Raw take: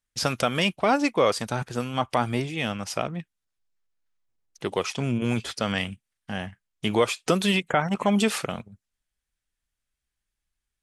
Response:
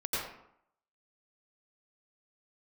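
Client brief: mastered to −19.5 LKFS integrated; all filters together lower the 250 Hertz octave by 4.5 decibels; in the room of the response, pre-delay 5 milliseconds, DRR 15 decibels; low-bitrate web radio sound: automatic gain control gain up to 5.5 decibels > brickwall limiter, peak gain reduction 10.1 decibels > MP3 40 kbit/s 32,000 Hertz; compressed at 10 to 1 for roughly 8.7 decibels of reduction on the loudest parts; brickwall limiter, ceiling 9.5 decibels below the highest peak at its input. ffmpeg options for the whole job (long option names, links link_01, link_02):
-filter_complex "[0:a]equalizer=frequency=250:width_type=o:gain=-6,acompressor=threshold=-26dB:ratio=10,alimiter=limit=-21dB:level=0:latency=1,asplit=2[link_01][link_02];[1:a]atrim=start_sample=2205,adelay=5[link_03];[link_02][link_03]afir=irnorm=-1:irlink=0,volume=-21.5dB[link_04];[link_01][link_04]amix=inputs=2:normalize=0,dynaudnorm=maxgain=5.5dB,alimiter=level_in=6.5dB:limit=-24dB:level=0:latency=1,volume=-6.5dB,volume=22.5dB" -ar 32000 -c:a libmp3lame -b:a 40k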